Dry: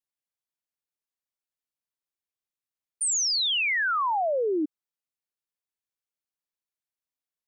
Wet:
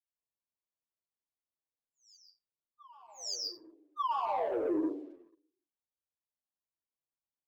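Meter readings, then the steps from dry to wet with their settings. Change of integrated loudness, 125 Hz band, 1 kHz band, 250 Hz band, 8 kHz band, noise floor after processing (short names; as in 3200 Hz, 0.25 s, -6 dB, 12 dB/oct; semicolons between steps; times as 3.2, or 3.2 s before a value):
-10.5 dB, n/a, -6.0 dB, -2.0 dB, -18.5 dB, under -85 dBFS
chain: brick-wall FIR band-stop 1200–4600 Hz; downsampling 16000 Hz; air absorption 170 m; plate-style reverb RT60 0.82 s, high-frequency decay 0.35×, pre-delay 0.115 s, DRR -5 dB; limiter -19.5 dBFS, peak gain reduction 11 dB; low-pass opened by the level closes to 1600 Hz, open at -28 dBFS; sample leveller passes 1; reverse echo 1.185 s -23.5 dB; endless flanger 9.4 ms -1.9 Hz; gain -4.5 dB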